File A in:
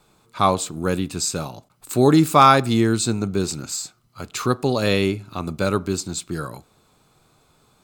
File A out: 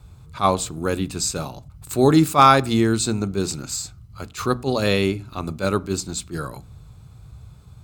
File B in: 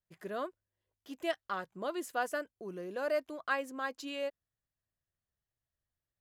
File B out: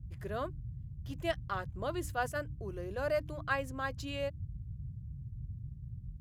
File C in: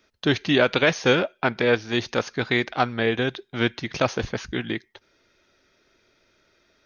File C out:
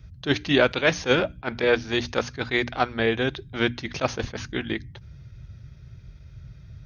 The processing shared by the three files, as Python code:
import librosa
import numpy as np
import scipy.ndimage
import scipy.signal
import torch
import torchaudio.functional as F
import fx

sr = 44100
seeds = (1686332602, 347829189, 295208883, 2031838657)

y = fx.hum_notches(x, sr, base_hz=60, count=5)
y = fx.dmg_noise_band(y, sr, seeds[0], low_hz=38.0, high_hz=140.0, level_db=-43.0)
y = fx.attack_slew(y, sr, db_per_s=300.0)